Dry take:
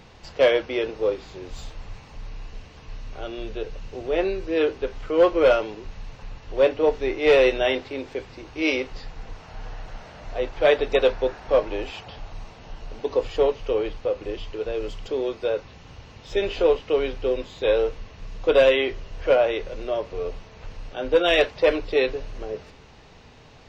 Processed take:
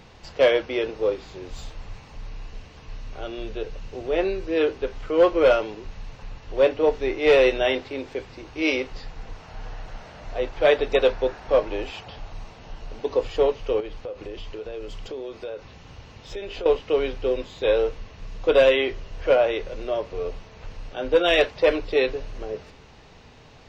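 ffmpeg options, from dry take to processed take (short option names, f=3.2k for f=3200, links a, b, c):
-filter_complex "[0:a]asettb=1/sr,asplit=3[a][b][c];[a]atrim=end=13.804[d];[b]atrim=start=13.8:end=16.66,asetpts=PTS-STARTPTS,afade=t=in:d=0.004:c=qsin,afade=t=out:st=2.856:d=0.004:c=qsin,acompressor=threshold=-31dB:ratio=4:attack=3.2:release=140:knee=1:detection=peak[e];[c]atrim=start=16.656[f];[d][e]acrossfade=d=0.004:c1=hsin:c2=qsin[g];[g][f]acrossfade=d=0.004:c1=qsin:c2=hsin"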